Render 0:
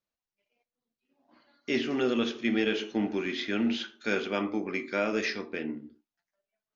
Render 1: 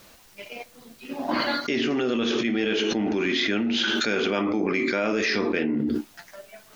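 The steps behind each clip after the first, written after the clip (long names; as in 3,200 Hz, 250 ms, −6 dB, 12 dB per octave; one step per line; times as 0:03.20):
envelope flattener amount 100%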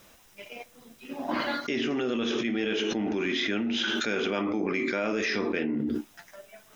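notch filter 4,400 Hz, Q 7
level −4 dB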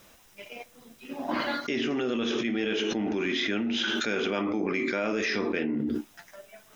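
no processing that can be heard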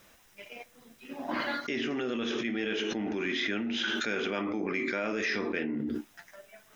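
parametric band 1,800 Hz +4 dB 0.75 octaves
level −4 dB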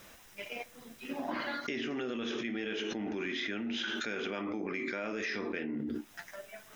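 downward compressor 6 to 1, threshold −38 dBFS, peak gain reduction 10.5 dB
level +4.5 dB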